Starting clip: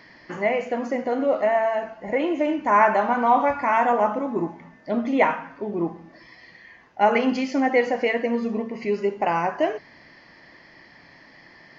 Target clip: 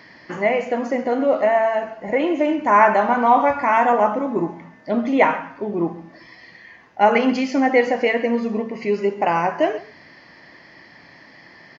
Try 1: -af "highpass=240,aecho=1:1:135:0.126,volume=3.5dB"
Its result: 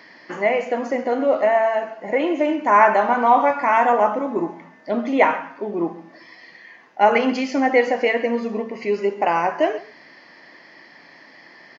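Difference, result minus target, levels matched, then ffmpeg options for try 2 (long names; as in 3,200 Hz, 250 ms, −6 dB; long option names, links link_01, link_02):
125 Hz band −5.5 dB
-af "highpass=63,aecho=1:1:135:0.126,volume=3.5dB"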